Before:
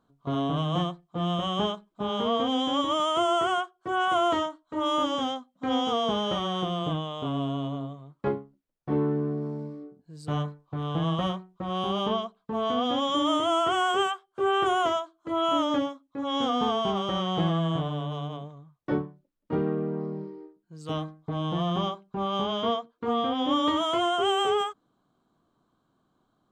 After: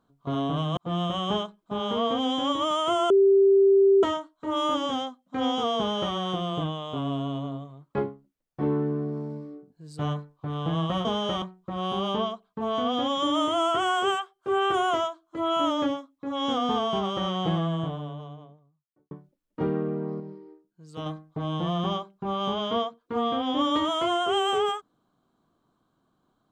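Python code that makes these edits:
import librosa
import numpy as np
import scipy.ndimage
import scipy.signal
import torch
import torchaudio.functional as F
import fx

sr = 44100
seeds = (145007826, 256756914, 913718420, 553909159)

y = fx.studio_fade_out(x, sr, start_s=17.22, length_s=1.81)
y = fx.edit(y, sr, fx.cut(start_s=0.77, length_s=0.29),
    fx.bleep(start_s=3.39, length_s=0.93, hz=392.0, db=-14.5),
    fx.duplicate(start_s=6.07, length_s=0.37, to_s=11.34),
    fx.clip_gain(start_s=20.12, length_s=0.86, db=-4.5), tone=tone)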